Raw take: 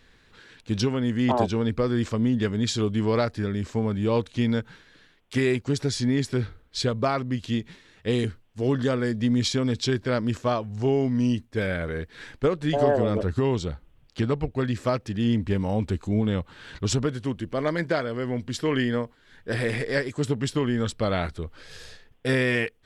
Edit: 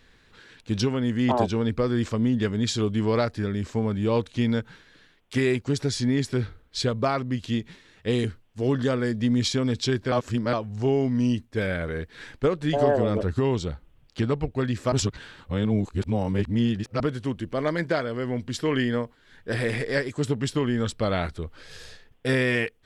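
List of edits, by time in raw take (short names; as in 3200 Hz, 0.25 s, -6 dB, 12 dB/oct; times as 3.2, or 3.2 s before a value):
10.12–10.53 reverse
14.92–17 reverse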